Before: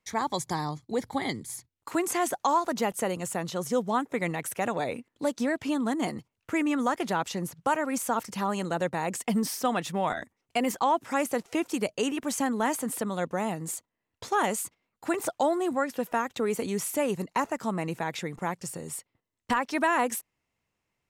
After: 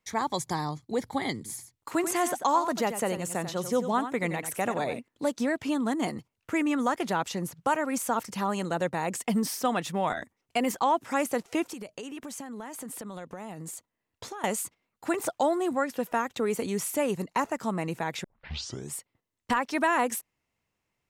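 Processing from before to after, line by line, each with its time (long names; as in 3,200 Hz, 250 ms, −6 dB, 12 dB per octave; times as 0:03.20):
0:01.36–0:04.99: single-tap delay 91 ms −10 dB
0:11.66–0:14.44: downward compressor 16 to 1, threshold −35 dBFS
0:18.24: tape start 0.69 s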